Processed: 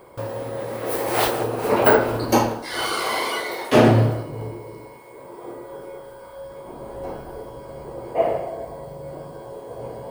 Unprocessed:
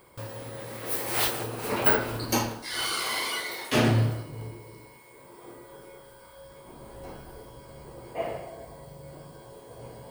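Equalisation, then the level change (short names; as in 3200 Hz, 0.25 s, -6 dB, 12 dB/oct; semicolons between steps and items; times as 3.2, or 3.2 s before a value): low shelf 160 Hz +5 dB; bell 580 Hz +12 dB 2.7 oct; 0.0 dB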